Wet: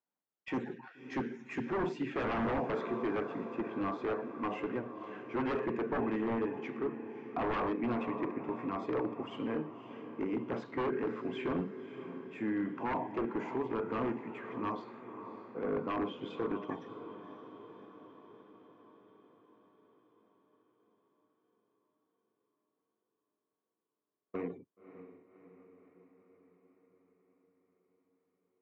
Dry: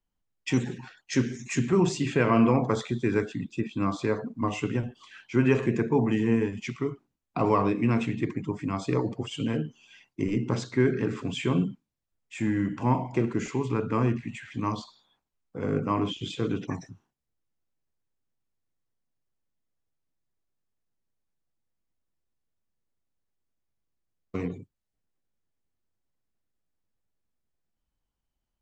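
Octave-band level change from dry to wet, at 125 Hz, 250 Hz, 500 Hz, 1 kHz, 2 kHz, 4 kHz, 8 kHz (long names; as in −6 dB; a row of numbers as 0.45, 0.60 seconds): −17.5 dB, −9.0 dB, −6.5 dB, −5.5 dB, −7.0 dB, −13.0 dB, below −25 dB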